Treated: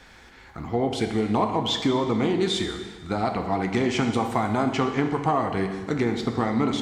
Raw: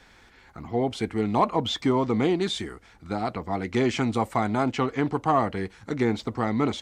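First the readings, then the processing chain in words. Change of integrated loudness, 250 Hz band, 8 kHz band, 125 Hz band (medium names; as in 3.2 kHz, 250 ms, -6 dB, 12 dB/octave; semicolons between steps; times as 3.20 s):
+1.0 dB, +1.5 dB, +3.5 dB, +1.5 dB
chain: compression, threshold -24 dBFS, peak gain reduction 8 dB; plate-style reverb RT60 1.5 s, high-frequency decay 0.9×, DRR 5 dB; trim +4 dB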